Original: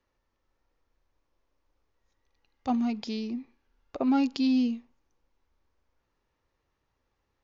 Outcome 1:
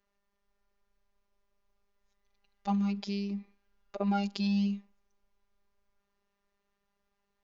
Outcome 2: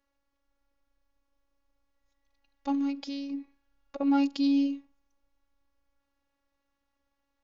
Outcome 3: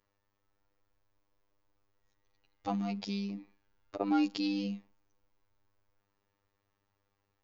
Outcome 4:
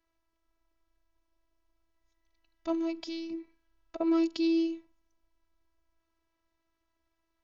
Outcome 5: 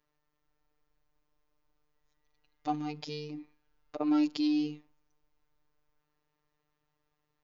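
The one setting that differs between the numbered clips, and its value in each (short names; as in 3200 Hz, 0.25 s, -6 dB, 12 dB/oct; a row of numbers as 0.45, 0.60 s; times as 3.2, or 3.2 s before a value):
robotiser, frequency: 200, 280, 100, 330, 150 Hz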